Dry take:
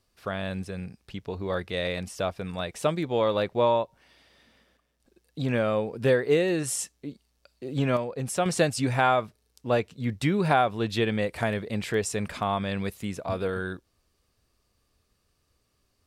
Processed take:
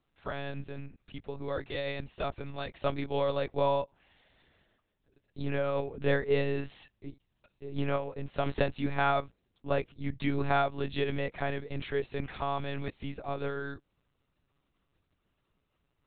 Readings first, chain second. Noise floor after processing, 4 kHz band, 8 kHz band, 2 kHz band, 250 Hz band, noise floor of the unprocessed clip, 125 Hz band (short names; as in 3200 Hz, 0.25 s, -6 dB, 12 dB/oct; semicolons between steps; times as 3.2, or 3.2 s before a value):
-79 dBFS, -7.0 dB, under -40 dB, -5.0 dB, -7.5 dB, -73 dBFS, -5.5 dB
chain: monotone LPC vocoder at 8 kHz 140 Hz; gain -5 dB